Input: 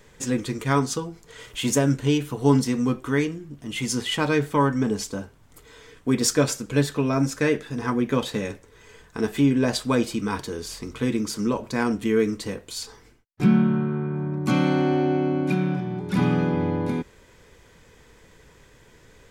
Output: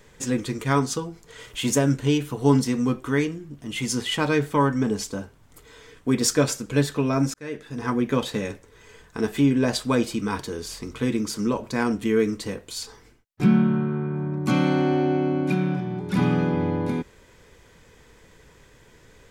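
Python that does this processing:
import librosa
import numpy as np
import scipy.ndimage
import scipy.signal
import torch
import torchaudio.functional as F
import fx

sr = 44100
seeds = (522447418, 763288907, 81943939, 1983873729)

y = fx.edit(x, sr, fx.fade_in_span(start_s=7.34, length_s=0.57), tone=tone)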